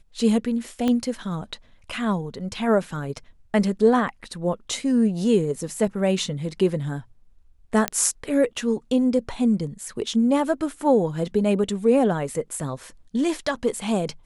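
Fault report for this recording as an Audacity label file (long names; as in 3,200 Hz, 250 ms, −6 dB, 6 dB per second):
0.880000	0.880000	click −12 dBFS
7.880000	7.880000	click −5 dBFS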